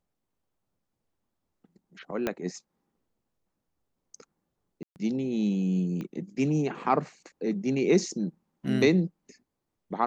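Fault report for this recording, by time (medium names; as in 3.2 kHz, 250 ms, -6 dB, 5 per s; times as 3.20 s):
2.27 s: pop -14 dBFS
4.83–4.96 s: dropout 129 ms
6.01 s: pop -25 dBFS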